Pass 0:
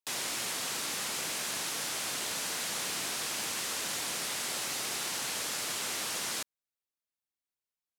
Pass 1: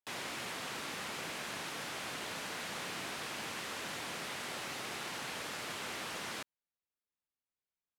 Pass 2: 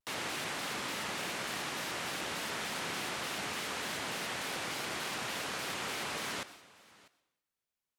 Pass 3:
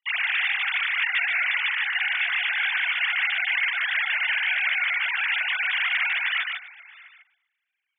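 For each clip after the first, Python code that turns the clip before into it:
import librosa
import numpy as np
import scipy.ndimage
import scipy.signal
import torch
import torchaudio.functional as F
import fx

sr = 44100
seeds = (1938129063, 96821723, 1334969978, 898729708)

y1 = fx.bass_treble(x, sr, bass_db=2, treble_db=-12)
y1 = y1 * librosa.db_to_amplitude(-2.0)
y2 = y1 + 10.0 ** (-22.5 / 20.0) * np.pad(y1, (int(645 * sr / 1000.0), 0))[:len(y1)]
y2 = fx.rev_plate(y2, sr, seeds[0], rt60_s=0.78, hf_ratio=0.95, predelay_ms=90, drr_db=14.5)
y2 = fx.vibrato_shape(y2, sr, shape='square', rate_hz=3.4, depth_cents=160.0)
y2 = y2 * librosa.db_to_amplitude(3.5)
y3 = fx.sine_speech(y2, sr)
y3 = fx.highpass_res(y3, sr, hz=2000.0, q=2.5)
y3 = y3 + 10.0 ** (-4.0 / 20.0) * np.pad(y3, (int(148 * sr / 1000.0), 0))[:len(y3)]
y3 = y3 * librosa.db_to_amplitude(8.5)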